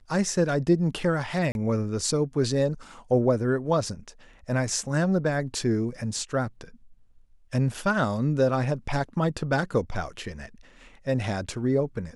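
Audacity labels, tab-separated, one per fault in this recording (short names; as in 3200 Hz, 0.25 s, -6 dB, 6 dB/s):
1.520000	1.550000	gap 31 ms
7.740000	7.740000	gap 4.1 ms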